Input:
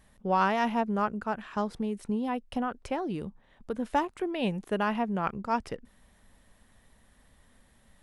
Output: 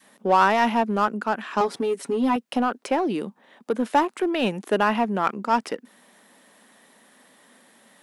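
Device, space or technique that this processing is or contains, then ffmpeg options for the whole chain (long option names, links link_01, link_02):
parallel distortion: -filter_complex "[0:a]highpass=frequency=230:width=0.5412,highpass=frequency=230:width=1.3066,asettb=1/sr,asplit=3[link_01][link_02][link_03];[link_01]atrim=end=1.604[link_04];[link_02]atrim=start=1.6:end=2.36,asetpts=PTS-STARTPTS,afade=type=in:duration=0.004:curve=qsin,afade=type=out:start_time=0.756:duration=0.004:curve=qsin,aecho=1:1:7.2:0.77,atrim=end_sample=33516[link_05];[link_03]atrim=start=2.356[link_06];[link_04][link_05]acrossfade=duration=0.004:curve1=hsin:curve2=qsin[link_07];[link_07][link_06]acrossfade=duration=0.004:curve1=qsin:curve2=hsin,asplit=2[link_08][link_09];[link_09]asoftclip=type=hard:threshold=-29.5dB,volume=-4.5dB[link_10];[link_08][link_10]amix=inputs=2:normalize=0,adynamicequalizer=threshold=0.0112:dfrequency=510:dqfactor=0.88:tfrequency=510:tqfactor=0.88:attack=5:release=100:ratio=0.375:range=2:mode=cutabove:tftype=bell,volume=6.5dB"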